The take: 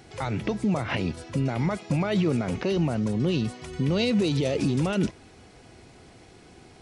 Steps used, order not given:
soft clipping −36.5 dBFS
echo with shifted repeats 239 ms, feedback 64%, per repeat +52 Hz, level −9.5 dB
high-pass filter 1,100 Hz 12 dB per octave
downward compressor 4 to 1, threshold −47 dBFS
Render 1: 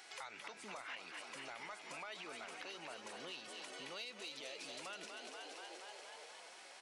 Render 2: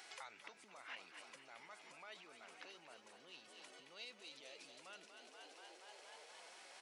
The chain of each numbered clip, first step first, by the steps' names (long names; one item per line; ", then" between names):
echo with shifted repeats, then high-pass filter, then downward compressor, then soft clipping
echo with shifted repeats, then downward compressor, then high-pass filter, then soft clipping